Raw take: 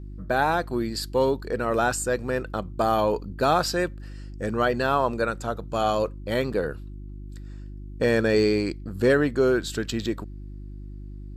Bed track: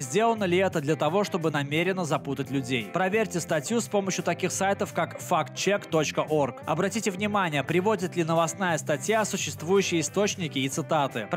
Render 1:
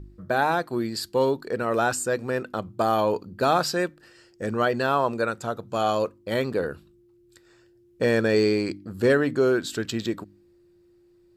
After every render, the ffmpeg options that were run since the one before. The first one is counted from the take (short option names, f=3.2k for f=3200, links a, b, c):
-af "bandreject=f=50:t=h:w=4,bandreject=f=100:t=h:w=4,bandreject=f=150:t=h:w=4,bandreject=f=200:t=h:w=4,bandreject=f=250:t=h:w=4,bandreject=f=300:t=h:w=4"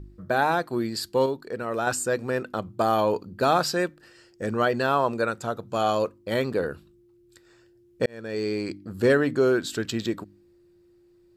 -filter_complex "[0:a]asplit=4[a][b][c][d];[a]atrim=end=1.262[e];[b]atrim=start=1.258:end=1.872,asetpts=PTS-STARTPTS,volume=-4.5dB[f];[c]atrim=start=1.868:end=8.06,asetpts=PTS-STARTPTS,afade=t=out:st=6.188:d=0.004:c=hsin[g];[d]atrim=start=8.06,asetpts=PTS-STARTPTS,afade=t=in:d=0.87[h];[e][f]acrossfade=d=0.004:c1=hsin:c2=hsin[i];[g][h]concat=n=2:v=0:a=1[j];[i][j]acrossfade=d=0.004:c1=hsin:c2=hsin"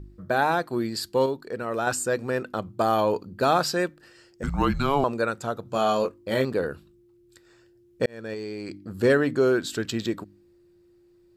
-filter_complex "[0:a]asettb=1/sr,asplit=3[a][b][c];[a]atrim=end=4.434[d];[b]atrim=start=4.43:end=5.04,asetpts=PTS-STARTPTS,afade=t=in:d=0.004:c=qsin,afade=t=out:st=0.606:d=0.004:c=qsin,afreqshift=-280[e];[c]atrim=start=5.036[f];[d][e]acrossfade=d=0.004:c1=hsin:c2=qsin[g];[g][f]acrossfade=d=0.004:c1=qsin:c2=hsin,asettb=1/sr,asplit=3[h][i][j];[h]atrim=end=5.634[k];[i]atrim=start=5.63:end=6.45,asetpts=PTS-STARTPTS,afade=t=in:d=0.004:c=qsin,afade=t=out:st=0.816:d=0.004:c=qsin,asplit=2[l][m];[m]adelay=23,volume=-6dB[n];[l][n]amix=inputs=2:normalize=0,atrim=end_sample=36162[o];[j]atrim=start=6.446[p];[k][o]acrossfade=d=0.004:c1=hsin:c2=qsin[q];[q][p]acrossfade=d=0.004:c1=qsin:c2=hsin,asettb=1/sr,asplit=3[r][s][t];[r]atrim=end=8.334[u];[s]atrim=start=8.33:end=8.88,asetpts=PTS-STARTPTS,afade=t=in:d=0.004:c=qsin,afade=t=out:st=0.546:d=0.004:c=qsin,acompressor=threshold=-30dB:ratio=6:attack=3.2:release=140:knee=1:detection=peak[v];[t]atrim=start=8.876[w];[u][v]acrossfade=d=0.004:c1=hsin:c2=qsin[x];[x][w]acrossfade=d=0.004:c1=qsin:c2=hsin"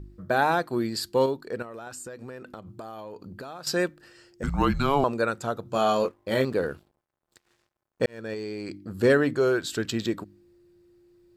-filter_complex "[0:a]asettb=1/sr,asplit=3[a][b][c];[a]atrim=end=1.624[d];[b]atrim=start=1.62:end=3.67,asetpts=PTS-STARTPTS,afade=t=in:d=0.004:c=qsin,afade=t=out:st=2.046:d=0.004:c=qsin,acompressor=threshold=-36dB:ratio=10:attack=3.2:release=140:knee=1:detection=peak[e];[c]atrim=start=3.666[f];[d][e]acrossfade=d=0.004:c1=hsin:c2=qsin[g];[g][f]acrossfade=d=0.004:c1=qsin:c2=hsin,asettb=1/sr,asplit=3[h][i][j];[h]atrim=end=5.894[k];[i]atrim=start=5.89:end=8.19,asetpts=PTS-STARTPTS,afade=t=in:d=0.004:c=qsin,afade=t=out:st=2.296:d=0.004:c=qsin,aeval=exprs='sgn(val(0))*max(abs(val(0))-0.00178,0)':c=same[l];[j]atrim=start=8.186[m];[k][l]acrossfade=d=0.004:c1=hsin:c2=qsin[n];[n][m]acrossfade=d=0.004:c1=qsin:c2=hsin,asettb=1/sr,asplit=3[o][p][q];[o]atrim=end=9.334[r];[p]atrim=start=9.33:end=9.77,asetpts=PTS-STARTPTS,afade=t=in:d=0.004:c=qsin,afade=t=out:st=0.436:d=0.004:c=qsin,equalizer=f=240:t=o:w=0.77:g=-8.5[s];[q]atrim=start=9.766[t];[r][s]acrossfade=d=0.004:c1=hsin:c2=qsin[u];[u][t]acrossfade=d=0.004:c1=qsin:c2=hsin"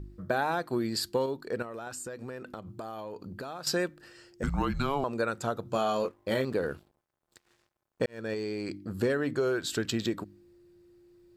-af "acompressor=threshold=-25dB:ratio=6"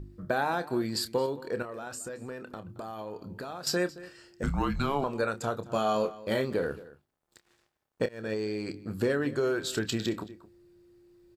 -filter_complex "[0:a]asplit=2[a][b];[b]adelay=28,volume=-11dB[c];[a][c]amix=inputs=2:normalize=0,asplit=2[d][e];[e]adelay=221.6,volume=-18dB,highshelf=f=4k:g=-4.99[f];[d][f]amix=inputs=2:normalize=0"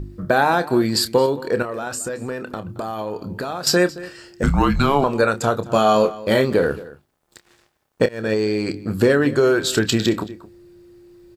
-af "volume=12dB,alimiter=limit=-3dB:level=0:latency=1"